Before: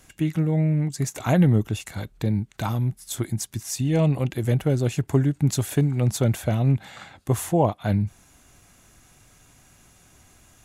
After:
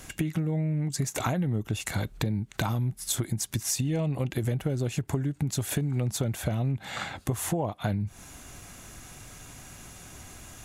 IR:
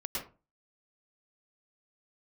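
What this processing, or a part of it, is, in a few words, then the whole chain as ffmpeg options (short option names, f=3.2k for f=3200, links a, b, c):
serial compression, peaks first: -af "acompressor=threshold=-28dB:ratio=6,acompressor=threshold=-36dB:ratio=2.5,volume=8.5dB"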